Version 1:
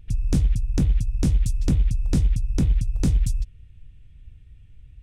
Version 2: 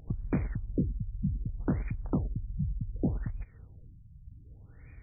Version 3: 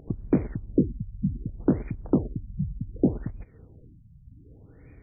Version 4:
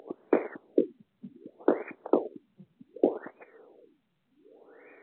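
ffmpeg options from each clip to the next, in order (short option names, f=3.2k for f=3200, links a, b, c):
-filter_complex "[0:a]acompressor=threshold=-29dB:ratio=3,asplit=2[a][b];[b]highpass=f=720:p=1,volume=31dB,asoftclip=type=tanh:threshold=-5dB[c];[a][c]amix=inputs=2:normalize=0,lowpass=f=2.9k:p=1,volume=-6dB,afftfilt=real='re*lt(b*sr/1024,200*pow(2500/200,0.5+0.5*sin(2*PI*0.66*pts/sr)))':imag='im*lt(b*sr/1024,200*pow(2500/200,0.5+0.5*sin(2*PI*0.66*pts/sr)))':win_size=1024:overlap=0.75,volume=-8dB"
-af "equalizer=f=360:w=0.54:g=15,volume=-3.5dB"
-af "highpass=f=420:w=0.5412,highpass=f=420:w=1.3066,volume=7.5dB" -ar 8000 -c:a pcm_mulaw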